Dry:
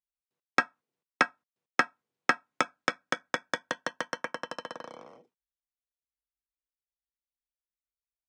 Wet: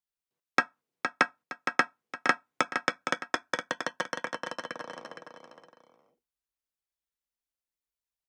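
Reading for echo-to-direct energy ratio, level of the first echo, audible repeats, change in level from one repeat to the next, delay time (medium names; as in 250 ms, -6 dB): -6.5 dB, -7.0 dB, 2, -9.0 dB, 464 ms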